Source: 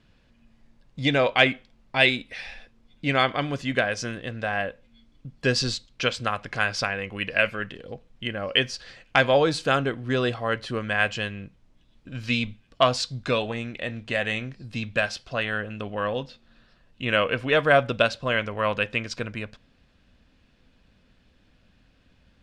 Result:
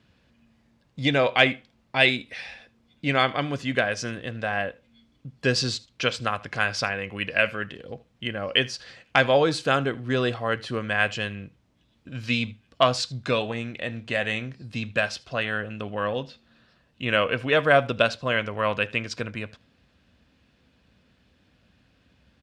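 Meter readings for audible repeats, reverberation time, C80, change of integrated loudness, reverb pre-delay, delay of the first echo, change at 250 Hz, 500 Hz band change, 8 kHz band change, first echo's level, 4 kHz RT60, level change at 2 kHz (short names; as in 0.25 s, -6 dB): 1, none, none, 0.0 dB, none, 78 ms, 0.0 dB, 0.0 dB, 0.0 dB, -23.0 dB, none, 0.0 dB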